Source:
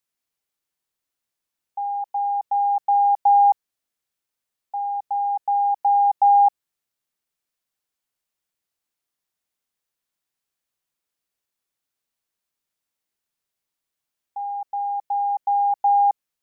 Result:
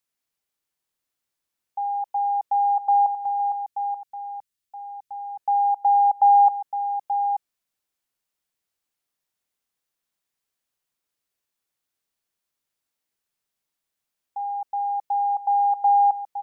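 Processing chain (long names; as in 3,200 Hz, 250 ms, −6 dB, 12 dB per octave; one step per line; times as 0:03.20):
0:03.06–0:05.38: parametric band 690 Hz −11 dB 2.3 octaves
single-tap delay 881 ms −9 dB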